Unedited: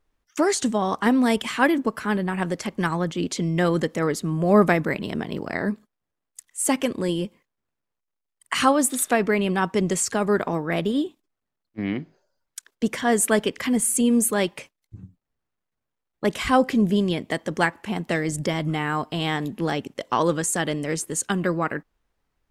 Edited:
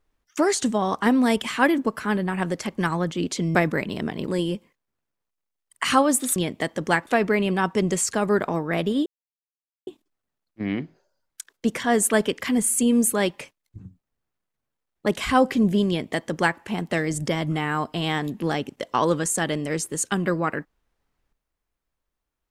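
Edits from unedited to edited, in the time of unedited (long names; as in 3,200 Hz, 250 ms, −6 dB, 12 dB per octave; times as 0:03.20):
0:03.55–0:04.68: remove
0:05.40–0:06.97: remove
0:11.05: splice in silence 0.81 s
0:17.06–0:17.77: duplicate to 0:09.06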